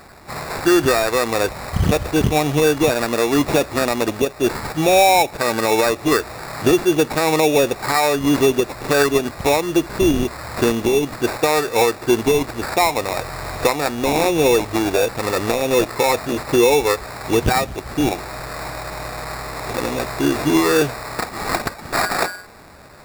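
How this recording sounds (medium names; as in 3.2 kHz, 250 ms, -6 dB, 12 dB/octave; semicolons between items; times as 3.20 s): aliases and images of a low sample rate 3.1 kHz, jitter 0%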